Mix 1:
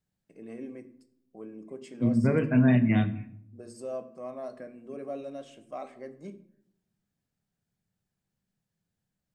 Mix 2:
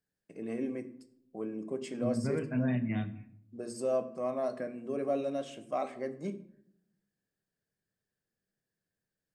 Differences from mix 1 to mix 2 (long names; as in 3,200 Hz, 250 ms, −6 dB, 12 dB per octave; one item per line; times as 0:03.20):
first voice +5.5 dB
second voice −9.5 dB